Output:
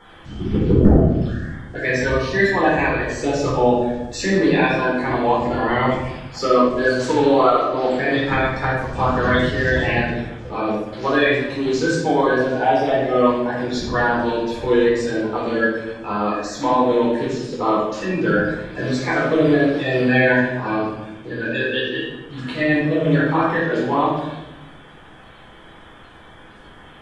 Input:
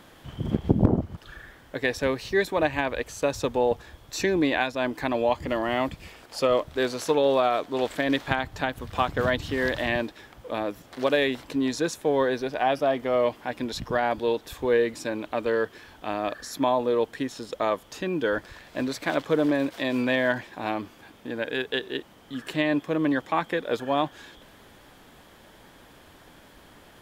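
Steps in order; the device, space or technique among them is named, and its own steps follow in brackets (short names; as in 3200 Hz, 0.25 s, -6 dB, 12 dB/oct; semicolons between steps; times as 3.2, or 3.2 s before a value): 7.63–8.21 LPF 6200 Hz 12 dB/oct; clip after many re-uploads (LPF 7900 Hz 24 dB/oct; bin magnitudes rounded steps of 30 dB); shoebox room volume 390 m³, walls mixed, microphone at 4.2 m; gain -3 dB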